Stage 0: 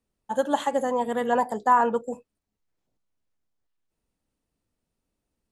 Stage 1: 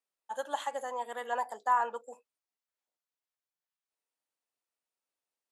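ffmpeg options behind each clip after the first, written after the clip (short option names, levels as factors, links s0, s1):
-af "highpass=730,volume=0.473"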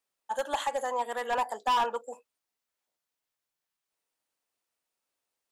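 -af "asoftclip=type=hard:threshold=0.0376,volume=2"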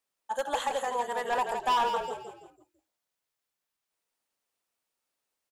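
-filter_complex "[0:a]asplit=5[s0][s1][s2][s3][s4];[s1]adelay=166,afreqshift=-42,volume=0.473[s5];[s2]adelay=332,afreqshift=-84,volume=0.18[s6];[s3]adelay=498,afreqshift=-126,volume=0.0684[s7];[s4]adelay=664,afreqshift=-168,volume=0.026[s8];[s0][s5][s6][s7][s8]amix=inputs=5:normalize=0"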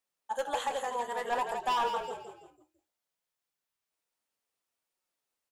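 -af "flanger=delay=5.4:depth=8.4:regen=68:speed=0.6:shape=sinusoidal,volume=1.19"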